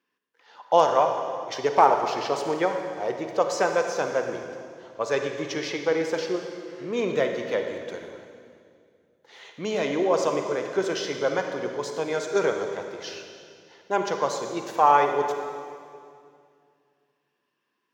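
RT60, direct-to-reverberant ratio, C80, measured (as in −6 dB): 2.3 s, 4.5 dB, 6.0 dB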